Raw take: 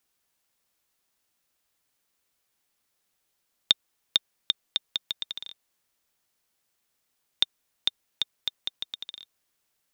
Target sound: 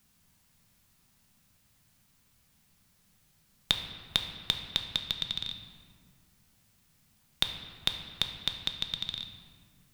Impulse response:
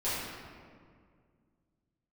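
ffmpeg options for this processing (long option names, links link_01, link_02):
-filter_complex "[0:a]lowshelf=frequency=260:width_type=q:width=1.5:gain=14,acompressor=threshold=-37dB:ratio=2.5,asplit=2[link_01][link_02];[1:a]atrim=start_sample=2205[link_03];[link_02][link_03]afir=irnorm=-1:irlink=0,volume=-11.5dB[link_04];[link_01][link_04]amix=inputs=2:normalize=0,volume=6dB"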